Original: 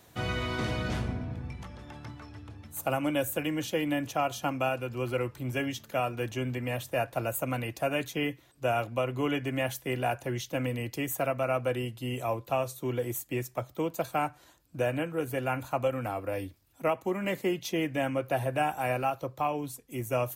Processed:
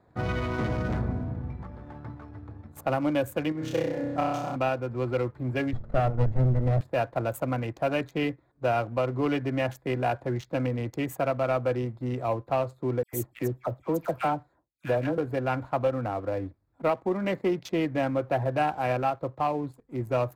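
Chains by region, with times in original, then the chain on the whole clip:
3.52–4.56 s: level held to a coarse grid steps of 13 dB + flutter echo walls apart 5.4 m, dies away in 1.4 s
5.73–6.81 s: comb filter that takes the minimum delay 1.5 ms + tilt EQ -3.5 dB/octave
13.03–15.18 s: expander -54 dBFS + treble shelf 9.3 kHz +11 dB + phase dispersion lows, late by 102 ms, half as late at 1.8 kHz
whole clip: local Wiener filter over 15 samples; treble shelf 5.4 kHz -11.5 dB; waveshaping leveller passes 1

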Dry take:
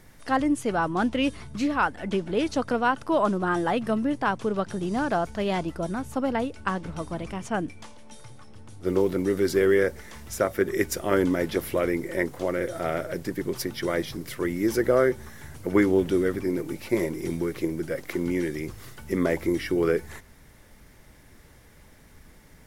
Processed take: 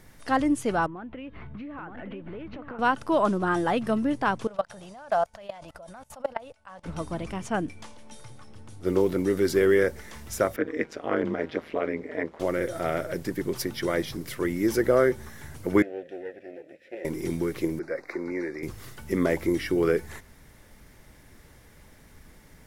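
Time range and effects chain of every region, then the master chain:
0.86–2.79 s: low-pass 2.6 kHz 24 dB/octave + compression 16:1, threshold -35 dBFS + delay 926 ms -6.5 dB
4.47–6.86 s: resonant low shelf 470 Hz -8 dB, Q 3 + level held to a coarse grid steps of 22 dB
10.56–12.40 s: band-pass 260–2900 Hz + ring modulator 78 Hz
15.82–17.05 s: comb filter that takes the minimum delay 0.54 ms + vowel filter e
17.79–18.63 s: Butterworth band-stop 3.1 kHz, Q 1.6 + three-band isolator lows -15 dB, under 320 Hz, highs -22 dB, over 4.7 kHz
whole clip: none

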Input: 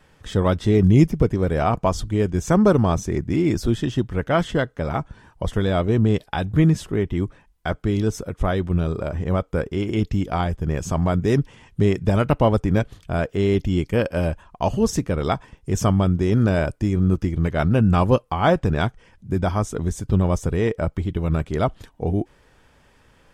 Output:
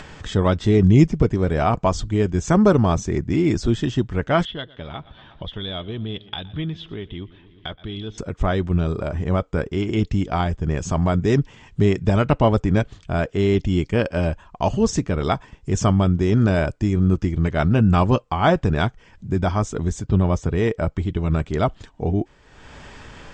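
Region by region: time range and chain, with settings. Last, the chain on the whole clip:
4.45–8.18 s: four-pole ladder low-pass 3.6 kHz, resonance 80% + modulated delay 119 ms, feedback 54%, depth 72 cents, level -21 dB
20.02–20.57 s: high-pass 40 Hz + distance through air 67 m
whole clip: elliptic low-pass 7.6 kHz, stop band 60 dB; band-stop 510 Hz, Q 12; upward compressor, threshold -29 dBFS; trim +2 dB

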